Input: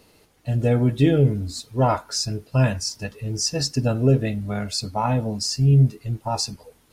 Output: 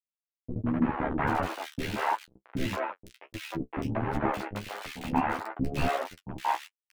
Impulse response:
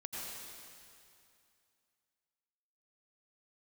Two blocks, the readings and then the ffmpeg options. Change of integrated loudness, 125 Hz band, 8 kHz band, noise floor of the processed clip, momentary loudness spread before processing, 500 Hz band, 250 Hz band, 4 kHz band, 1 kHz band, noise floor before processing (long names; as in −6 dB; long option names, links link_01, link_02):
−9.5 dB, −17.5 dB, −21.0 dB, below −85 dBFS, 11 LU, −10.0 dB, −8.0 dB, −14.5 dB, −1.0 dB, −58 dBFS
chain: -filter_complex "[0:a]aeval=exprs='if(lt(val(0),0),0.708*val(0),val(0))':channel_layout=same,asplit=3[link_01][link_02][link_03];[link_01]bandpass=frequency=300:width_type=q:width=8,volume=0dB[link_04];[link_02]bandpass=frequency=870:width_type=q:width=8,volume=-6dB[link_05];[link_03]bandpass=frequency=2240:width_type=q:width=8,volume=-9dB[link_06];[link_04][link_05][link_06]amix=inputs=3:normalize=0,equalizer=frequency=72:width=3.4:gain=4.5,aecho=1:1:1.1:0.87,bandreject=frequency=214:width_type=h:width=4,bandreject=frequency=428:width_type=h:width=4,bandreject=frequency=642:width_type=h:width=4,bandreject=frequency=856:width_type=h:width=4,bandreject=frequency=1070:width_type=h:width=4,bandreject=frequency=1284:width_type=h:width=4,bandreject=frequency=1498:width_type=h:width=4,bandreject=frequency=1712:width_type=h:width=4,bandreject=frequency=1926:width_type=h:width=4,bandreject=frequency=2140:width_type=h:width=4,bandreject=frequency=2354:width_type=h:width=4,bandreject=frequency=2568:width_type=h:width=4,bandreject=frequency=2782:width_type=h:width=4,bandreject=frequency=2996:width_type=h:width=4,bandreject=frequency=3210:width_type=h:width=4,acrusher=bits=5:mix=0:aa=0.000001,aeval=exprs='0.2*sin(PI/2*7.08*val(0)/0.2)':channel_layout=same,flanger=delay=9.6:depth=2.8:regen=4:speed=0.47:shape=sinusoidal,acrossover=split=2800[link_07][link_08];[link_08]acompressor=threshold=-42dB:ratio=4:attack=1:release=60[link_09];[link_07][link_09]amix=inputs=2:normalize=0,tremolo=f=73:d=0.75,flanger=delay=9:depth=7:regen=29:speed=1.5:shape=sinusoidal,acrossover=split=430|2200[link_10][link_11][link_12];[link_11]adelay=180[link_13];[link_12]adelay=790[link_14];[link_10][link_13][link_14]amix=inputs=3:normalize=0,volume=2.5dB"